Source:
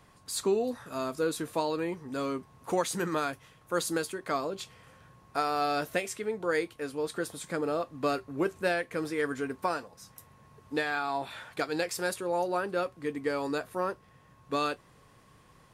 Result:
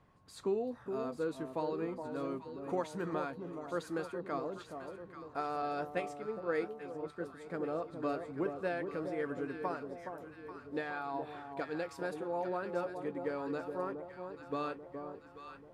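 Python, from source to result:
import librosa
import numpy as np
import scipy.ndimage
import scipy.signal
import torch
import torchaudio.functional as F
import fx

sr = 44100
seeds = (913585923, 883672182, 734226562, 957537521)

y = fx.lowpass(x, sr, hz=1300.0, slope=6)
y = fx.echo_alternate(y, sr, ms=419, hz=1000.0, feedback_pct=69, wet_db=-6.0)
y = fx.band_widen(y, sr, depth_pct=100, at=(5.62, 7.5))
y = y * librosa.db_to_amplitude(-6.0)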